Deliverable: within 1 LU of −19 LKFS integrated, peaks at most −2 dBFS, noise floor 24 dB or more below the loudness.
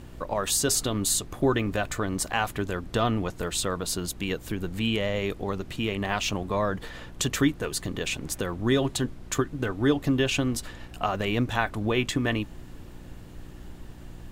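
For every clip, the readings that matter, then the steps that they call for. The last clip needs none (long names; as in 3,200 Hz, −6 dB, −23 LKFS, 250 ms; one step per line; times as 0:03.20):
mains hum 60 Hz; hum harmonics up to 360 Hz; level of the hum −47 dBFS; background noise floor −44 dBFS; target noise floor −52 dBFS; integrated loudness −27.5 LKFS; sample peak −8.0 dBFS; target loudness −19.0 LKFS
→ hum removal 60 Hz, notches 6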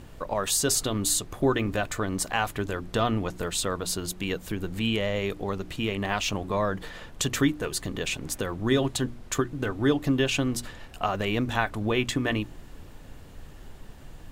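mains hum none found; background noise floor −46 dBFS; target noise floor −52 dBFS
→ noise reduction from a noise print 6 dB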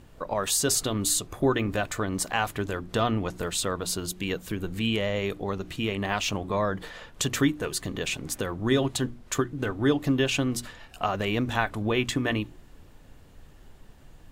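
background noise floor −52 dBFS; integrated loudness −27.5 LKFS; sample peak −8.0 dBFS; target loudness −19.0 LKFS
→ level +8.5 dB
brickwall limiter −2 dBFS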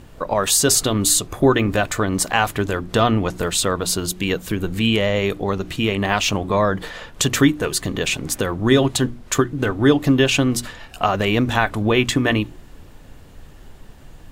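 integrated loudness −19.0 LKFS; sample peak −2.0 dBFS; background noise floor −43 dBFS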